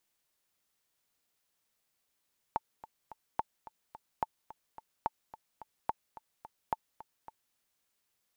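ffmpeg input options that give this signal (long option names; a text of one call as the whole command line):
ffmpeg -f lavfi -i "aevalsrc='pow(10,(-16.5-17*gte(mod(t,3*60/216),60/216))/20)*sin(2*PI*885*mod(t,60/216))*exp(-6.91*mod(t,60/216)/0.03)':duration=5:sample_rate=44100" out.wav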